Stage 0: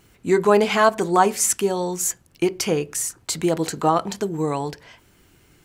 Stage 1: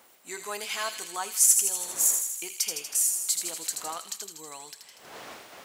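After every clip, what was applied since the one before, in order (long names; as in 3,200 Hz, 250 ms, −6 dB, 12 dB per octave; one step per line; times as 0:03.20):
wind on the microphone 610 Hz −31 dBFS
first difference
delay with a high-pass on its return 80 ms, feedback 66%, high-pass 2,400 Hz, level −5 dB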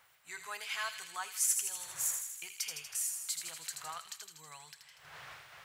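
drawn EQ curve 150 Hz 0 dB, 220 Hz −25 dB, 1,600 Hz −2 dB, 3,400 Hz −6 dB, 6,800 Hz −11 dB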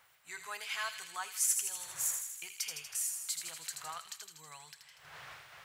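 no processing that can be heard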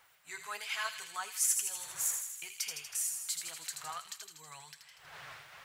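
flanger 1.4 Hz, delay 2.1 ms, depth 6.1 ms, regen +55%
level +5 dB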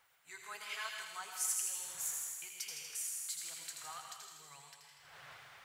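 convolution reverb RT60 1.2 s, pre-delay 95 ms, DRR 3 dB
level −6.5 dB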